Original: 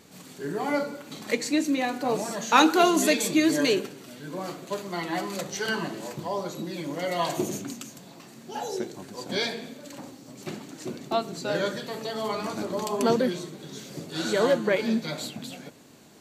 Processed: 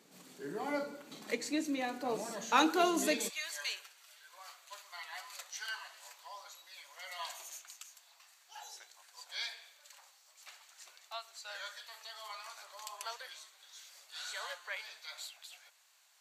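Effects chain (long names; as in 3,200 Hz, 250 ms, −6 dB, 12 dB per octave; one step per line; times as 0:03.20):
Bessel high-pass filter 210 Hz, order 6, from 0:03.28 1,300 Hz
level −9 dB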